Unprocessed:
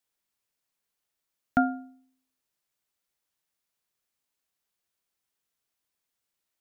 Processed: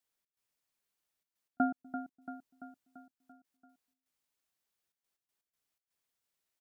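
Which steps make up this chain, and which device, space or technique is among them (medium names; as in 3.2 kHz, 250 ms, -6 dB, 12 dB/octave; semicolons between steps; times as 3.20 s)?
trance gate with a delay (trance gate "xx.xxxxxxx.x.x." 122 bpm -60 dB; feedback delay 339 ms, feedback 56%, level -10 dB); trim -3 dB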